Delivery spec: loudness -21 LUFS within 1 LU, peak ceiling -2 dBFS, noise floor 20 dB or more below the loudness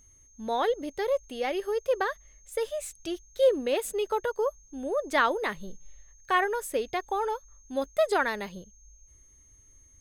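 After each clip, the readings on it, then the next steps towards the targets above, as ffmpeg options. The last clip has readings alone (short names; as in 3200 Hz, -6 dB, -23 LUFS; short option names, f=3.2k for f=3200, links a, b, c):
steady tone 6400 Hz; tone level -57 dBFS; loudness -29.0 LUFS; peak -11.0 dBFS; loudness target -21.0 LUFS
-> -af "bandreject=f=6.4k:w=30"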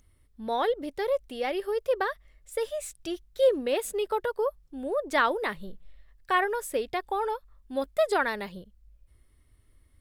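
steady tone none; loudness -29.0 LUFS; peak -11.0 dBFS; loudness target -21.0 LUFS
-> -af "volume=8dB"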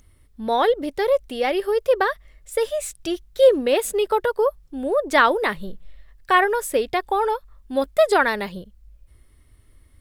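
loudness -21.0 LUFS; peak -3.0 dBFS; noise floor -55 dBFS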